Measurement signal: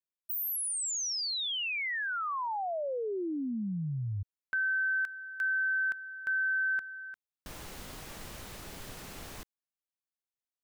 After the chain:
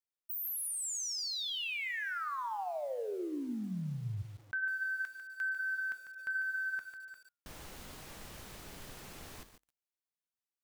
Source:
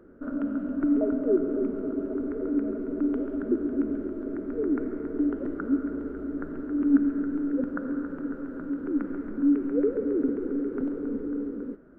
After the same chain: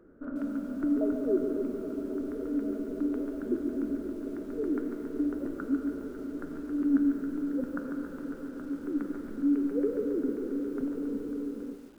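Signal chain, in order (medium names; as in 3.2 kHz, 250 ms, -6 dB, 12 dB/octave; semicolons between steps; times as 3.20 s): flange 0.18 Hz, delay 6.1 ms, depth 9.6 ms, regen -78%; bit-crushed delay 147 ms, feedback 35%, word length 9-bit, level -8.5 dB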